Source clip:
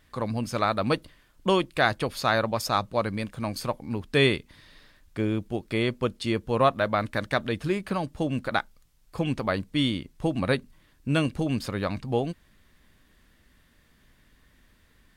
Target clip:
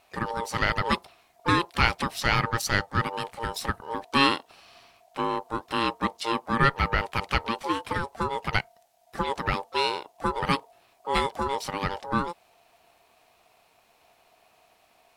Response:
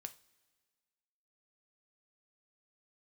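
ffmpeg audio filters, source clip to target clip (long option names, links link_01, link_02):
-filter_complex "[0:a]aeval=exprs='val(0)*sin(2*PI*690*n/s)':channel_layout=same,equalizer=frequency=560:width=1.1:gain=-6.5,asplit=2[link_01][link_02];[link_02]asetrate=58866,aresample=44100,atempo=0.749154,volume=-17dB[link_03];[link_01][link_03]amix=inputs=2:normalize=0,volume=4.5dB"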